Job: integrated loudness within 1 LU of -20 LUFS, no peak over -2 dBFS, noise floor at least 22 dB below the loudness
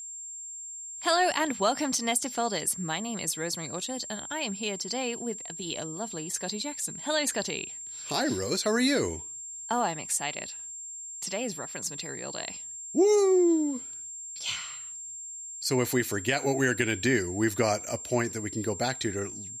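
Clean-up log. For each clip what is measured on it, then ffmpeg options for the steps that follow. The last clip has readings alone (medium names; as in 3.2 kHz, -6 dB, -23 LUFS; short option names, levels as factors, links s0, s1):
steady tone 7.4 kHz; tone level -38 dBFS; loudness -29.0 LUFS; peak level -12.5 dBFS; loudness target -20.0 LUFS
-> -af "bandreject=f=7400:w=30"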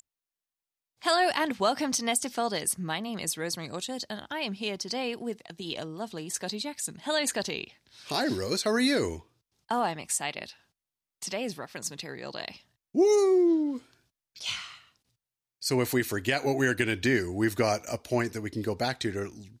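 steady tone not found; loudness -29.0 LUFS; peak level -12.5 dBFS; loudness target -20.0 LUFS
-> -af "volume=2.82"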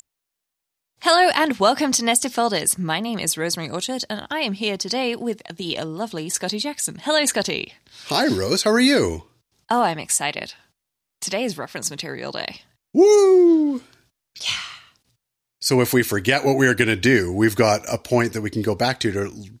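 loudness -20.0 LUFS; peak level -3.5 dBFS; noise floor -82 dBFS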